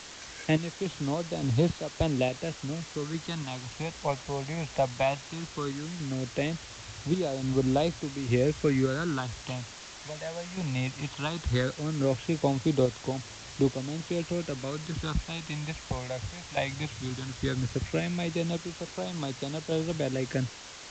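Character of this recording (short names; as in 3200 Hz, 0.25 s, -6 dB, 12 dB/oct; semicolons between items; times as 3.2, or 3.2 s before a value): phasing stages 6, 0.17 Hz, lowest notch 340–1900 Hz; random-step tremolo, depth 75%; a quantiser's noise floor 8-bit, dither triangular; G.722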